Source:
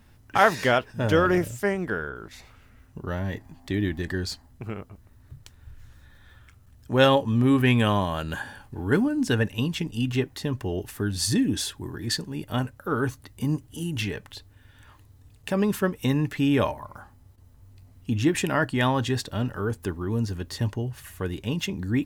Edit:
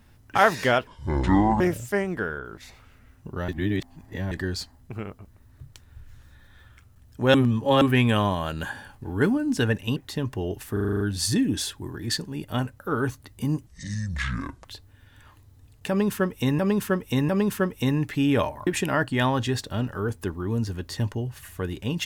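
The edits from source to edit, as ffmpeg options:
-filter_complex "[0:a]asplit=20[a][b][c][d][e][f][g][h][i][j][k][l][m][n][o][p][q][r][s][t];[a]atrim=end=0.874[u];[b]atrim=start=0.87:end=1.31,asetpts=PTS-STARTPTS,asetrate=26460,aresample=44100[v];[c]atrim=start=1.306:end=3.192[w];[d]atrim=start=3.188:end=4.022,asetpts=PTS-STARTPTS,areverse[x];[e]atrim=start=4.018:end=7.052[y];[f]atrim=start=7.048:end=7.522,asetpts=PTS-STARTPTS,areverse[z];[g]atrim=start=7.518:end=9.672[aa];[h]atrim=start=10.238:end=11.042[ab];[i]atrim=start=10.998:end=11.042[ac];[j]atrim=start=10.998:end=11.042[ad];[k]atrim=start=10.998:end=11.042[ae];[l]atrim=start=10.998:end=11.042[af];[m]atrim=start=10.998:end=11.042[ag];[n]atrim=start=10.998:end=11.042[ah];[o]atrim=start=10.998:end=13.664[ai];[p]atrim=start=13.66:end=14.27,asetpts=PTS-STARTPTS,asetrate=27342,aresample=44100[aj];[q]atrim=start=14.266:end=16.212[ak];[r]atrim=start=15.508:end=16.212[al];[s]atrim=start=15.508:end=16.892[am];[t]atrim=start=18.278[an];[u][v]acrossfade=d=0.004:c1=hsin:c2=hsin[ao];[ao][w]acrossfade=d=0.004:c1=hsin:c2=hsin[ap];[ap][x]acrossfade=d=0.004:c1=hsin:c2=hsin[aq];[aq][y]acrossfade=d=0.004:c1=hsin:c2=hsin[ar];[ar][z]acrossfade=d=0.004:c1=hsin:c2=hsin[as];[as][aa]acrossfade=d=0.004:c1=hsin:c2=hsin[at];[at][ab]acrossfade=d=0.004:c1=hsin:c2=hsin[au];[au][ac]acrossfade=d=0.004:c1=hsin:c2=hsin[av];[av][ad]acrossfade=d=0.004:c1=hsin:c2=hsin[aw];[aw][ae]acrossfade=d=0.004:c1=hsin:c2=hsin[ax];[ax][af]acrossfade=d=0.004:c1=hsin:c2=hsin[ay];[ay][ag]acrossfade=d=0.004:c1=hsin:c2=hsin[az];[az][ah]acrossfade=d=0.004:c1=hsin:c2=hsin[ba];[ba][ai]acrossfade=d=0.004:c1=hsin:c2=hsin[bb];[bb][aj]acrossfade=d=0.004:c1=hsin:c2=hsin[bc];[bc][ak]acrossfade=d=0.004:c1=hsin:c2=hsin[bd];[bd][al]acrossfade=d=0.004:c1=hsin:c2=hsin[be];[be][am]acrossfade=d=0.004:c1=hsin:c2=hsin[bf];[bf][an]acrossfade=d=0.004:c1=hsin:c2=hsin"

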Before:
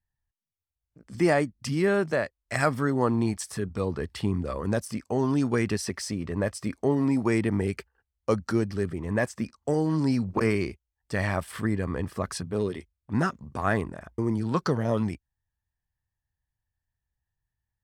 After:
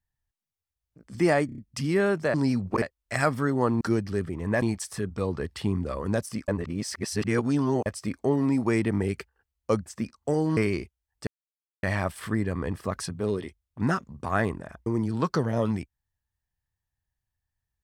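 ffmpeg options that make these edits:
-filter_complex "[0:a]asplit=14[a][b][c][d][e][f][g][h][i][j][k][l][m][n];[a]atrim=end=1.492[o];[b]atrim=start=1.458:end=1.492[p];[c]atrim=start=1.458:end=1.492[q];[d]atrim=start=1.458:end=1.492[r];[e]atrim=start=1.458:end=2.222[s];[f]atrim=start=9.968:end=10.452[t];[g]atrim=start=2.218:end=3.212[u];[h]atrim=start=8.448:end=9.262[v];[i]atrim=start=3.208:end=5.072[w];[j]atrim=start=5.068:end=6.452,asetpts=PTS-STARTPTS,areverse[x];[k]atrim=start=6.448:end=8.452[y];[l]atrim=start=9.258:end=9.972[z];[m]atrim=start=10.448:end=11.15,asetpts=PTS-STARTPTS,afade=t=out:st=0.698:d=0.004:c=hsin,apad=pad_dur=0.56[aa];[n]atrim=start=11.15,asetpts=PTS-STARTPTS,afade=t=in:d=0.004:c=hsin[ab];[o][p]acrossfade=d=0.004:c1=hsin:c2=hsin[ac];[ac][q]acrossfade=d=0.004:c1=hsin:c2=hsin[ad];[ad][r]acrossfade=d=0.004:c1=hsin:c2=hsin[ae];[ae][s]acrossfade=d=0.004:c1=hsin:c2=hsin[af];[af][t]acrossfade=d=0.004:c1=hsin:c2=hsin[ag];[ag][u]acrossfade=d=0.004:c1=hsin:c2=hsin[ah];[ah][v]acrossfade=d=0.004:c1=hsin:c2=hsin[ai];[ai][w]acrossfade=d=0.004:c1=hsin:c2=hsin[aj];[aj][x]acrossfade=d=0.004:c1=hsin:c2=hsin[ak];[ak][y]acrossfade=d=0.004:c1=hsin:c2=hsin[al];[al][z]acrossfade=d=0.004:c1=hsin:c2=hsin[am];[aa][ab]concat=n=2:v=0:a=1[an];[am][an]acrossfade=d=0.004:c1=hsin:c2=hsin"

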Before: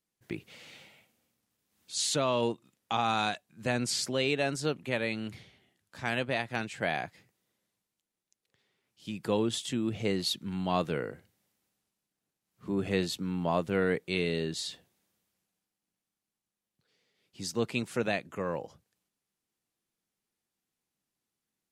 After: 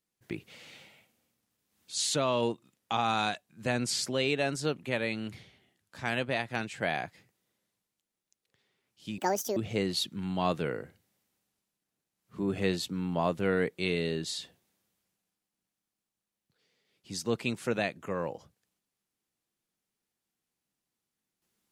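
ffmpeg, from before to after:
-filter_complex "[0:a]asplit=3[a][b][c];[a]atrim=end=9.184[d];[b]atrim=start=9.18:end=9.86,asetpts=PTS-STARTPTS,asetrate=77616,aresample=44100[e];[c]atrim=start=9.856[f];[d][e]acrossfade=d=0.004:c1=hsin:c2=hsin[g];[g][f]acrossfade=d=0.004:c1=hsin:c2=hsin"

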